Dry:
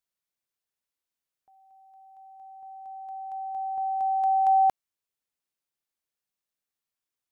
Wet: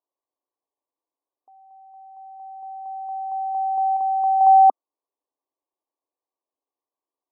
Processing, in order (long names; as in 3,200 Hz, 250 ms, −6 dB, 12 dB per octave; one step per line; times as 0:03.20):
linear-phase brick-wall band-pass 250–1,200 Hz
0:03.96–0:04.41: dynamic equaliser 680 Hz, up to −6 dB, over −39 dBFS, Q 2.5
level +8 dB